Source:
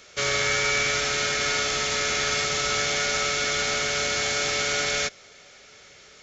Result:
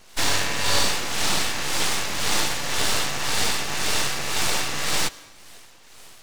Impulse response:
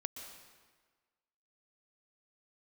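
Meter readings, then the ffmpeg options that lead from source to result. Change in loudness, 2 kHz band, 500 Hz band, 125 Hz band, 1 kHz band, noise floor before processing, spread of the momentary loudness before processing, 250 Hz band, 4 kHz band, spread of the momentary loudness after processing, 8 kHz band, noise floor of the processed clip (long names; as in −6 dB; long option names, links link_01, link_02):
0.0 dB, −2.5 dB, −4.0 dB, +2.5 dB, +1.0 dB, −51 dBFS, 2 LU, +4.5 dB, +1.0 dB, 3 LU, can't be measured, −48 dBFS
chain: -filter_complex "[0:a]bandreject=frequency=450:width=15,acrossover=split=590[link_01][link_02];[link_01]aeval=exprs='val(0)*(1-0.7/2+0.7/2*cos(2*PI*1.9*n/s))':channel_layout=same[link_03];[link_02]aeval=exprs='val(0)*(1-0.7/2-0.7/2*cos(2*PI*1.9*n/s))':channel_layout=same[link_04];[link_03][link_04]amix=inputs=2:normalize=0,acrossover=split=5600[link_05][link_06];[link_06]acompressor=threshold=-42dB:ratio=4:attack=1:release=60[link_07];[link_05][link_07]amix=inputs=2:normalize=0,aeval=exprs='abs(val(0))':channel_layout=same,asplit=2[link_08][link_09];[1:a]atrim=start_sample=2205,afade=type=out:start_time=0.36:duration=0.01,atrim=end_sample=16317[link_10];[link_09][link_10]afir=irnorm=-1:irlink=0,volume=-11dB[link_11];[link_08][link_11]amix=inputs=2:normalize=0,volume=6.5dB"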